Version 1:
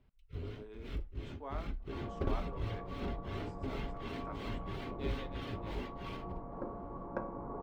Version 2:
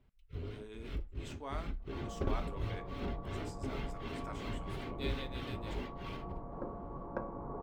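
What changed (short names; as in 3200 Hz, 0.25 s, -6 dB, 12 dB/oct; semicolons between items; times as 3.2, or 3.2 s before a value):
speech: remove band-pass 630 Hz, Q 0.52; second sound: send -10.0 dB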